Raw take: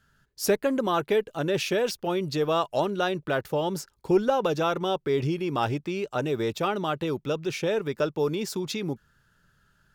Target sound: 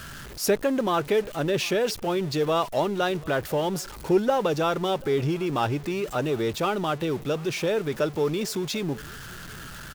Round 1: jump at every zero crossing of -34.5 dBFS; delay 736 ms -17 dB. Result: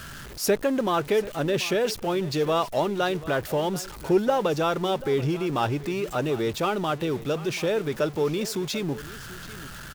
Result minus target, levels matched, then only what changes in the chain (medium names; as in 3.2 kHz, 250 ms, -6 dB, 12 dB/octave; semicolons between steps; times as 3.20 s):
echo-to-direct +6.5 dB
change: delay 736 ms -23.5 dB